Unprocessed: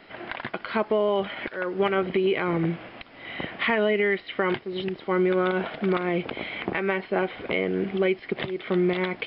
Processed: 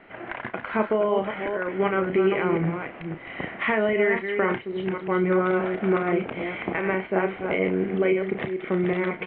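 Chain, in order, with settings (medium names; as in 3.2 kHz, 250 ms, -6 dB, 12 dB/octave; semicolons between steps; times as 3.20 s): chunks repeated in reverse 262 ms, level -6 dB; low-pass 2.5 kHz 24 dB/octave; doubling 32 ms -9 dB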